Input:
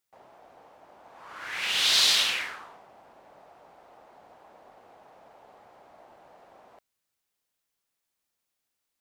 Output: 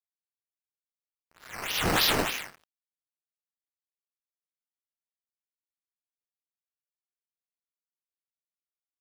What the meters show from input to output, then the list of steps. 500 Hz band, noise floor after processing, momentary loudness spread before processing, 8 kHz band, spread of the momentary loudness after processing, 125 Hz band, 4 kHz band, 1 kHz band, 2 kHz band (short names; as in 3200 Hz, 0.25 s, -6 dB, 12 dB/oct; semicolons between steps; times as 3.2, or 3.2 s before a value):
+9.0 dB, under -85 dBFS, 18 LU, -5.5 dB, 20 LU, n/a, -7.0 dB, +4.5 dB, -2.0 dB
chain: decimation with a swept rate 9×, swing 100% 3.3 Hz; feedback echo 89 ms, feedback 46%, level -22.5 dB; crossover distortion -37.5 dBFS; gain -1.5 dB